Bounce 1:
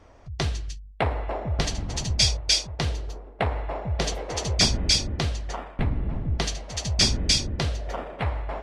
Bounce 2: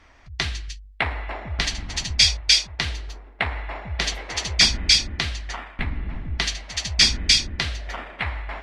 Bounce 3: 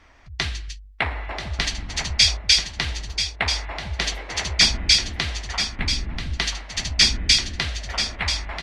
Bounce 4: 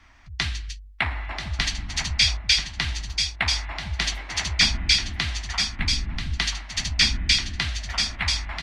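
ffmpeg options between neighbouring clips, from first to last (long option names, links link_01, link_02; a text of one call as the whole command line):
ffmpeg -i in.wav -af "equalizer=frequency=125:width_type=o:width=1:gain=-8,equalizer=frequency=500:width_type=o:width=1:gain=-9,equalizer=frequency=2000:width_type=o:width=1:gain=9,equalizer=frequency=4000:width_type=o:width=1:gain=5" out.wav
ffmpeg -i in.wav -af "aecho=1:1:986:0.376" out.wav
ffmpeg -i in.wav -filter_complex "[0:a]acrossover=split=210|3800[link_01][link_02][link_03];[link_02]equalizer=frequency=470:width=1.9:gain=-15[link_04];[link_03]alimiter=limit=-14dB:level=0:latency=1:release=453[link_05];[link_01][link_04][link_05]amix=inputs=3:normalize=0" out.wav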